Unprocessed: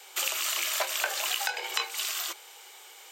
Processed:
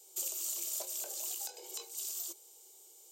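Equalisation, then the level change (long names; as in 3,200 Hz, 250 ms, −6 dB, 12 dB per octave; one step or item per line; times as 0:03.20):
drawn EQ curve 350 Hz 0 dB, 1,800 Hz −29 dB, 7,000 Hz 0 dB
−4.0 dB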